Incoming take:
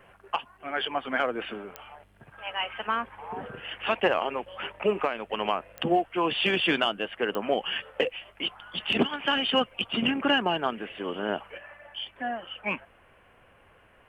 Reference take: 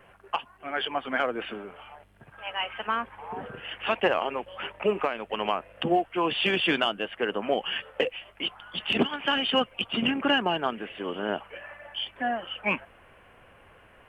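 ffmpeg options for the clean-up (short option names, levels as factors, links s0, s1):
-af "adeclick=t=4,asetnsamples=n=441:p=0,asendcmd='11.58 volume volume 3.5dB',volume=1"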